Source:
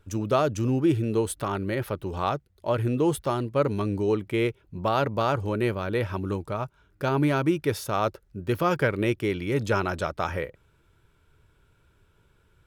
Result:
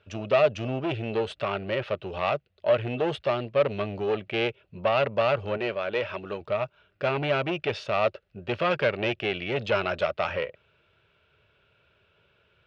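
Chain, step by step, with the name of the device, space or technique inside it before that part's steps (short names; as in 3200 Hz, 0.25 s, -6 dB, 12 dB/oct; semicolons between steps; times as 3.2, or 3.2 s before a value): 5.57–6.41 low shelf 180 Hz -10.5 dB; guitar amplifier (tube stage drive 21 dB, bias 0.4; tone controls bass -7 dB, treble +6 dB; speaker cabinet 77–3900 Hz, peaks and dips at 300 Hz -10 dB, 610 Hz +8 dB, 930 Hz -5 dB, 2700 Hz +9 dB); gain +3 dB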